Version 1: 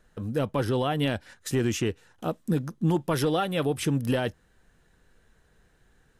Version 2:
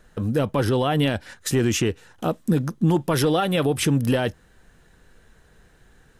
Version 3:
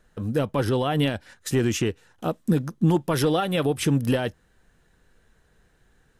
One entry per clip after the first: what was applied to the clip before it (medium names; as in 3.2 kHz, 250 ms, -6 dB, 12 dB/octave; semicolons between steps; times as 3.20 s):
peak limiter -20 dBFS, peak gain reduction 5 dB; trim +8 dB
upward expansion 1.5:1, over -30 dBFS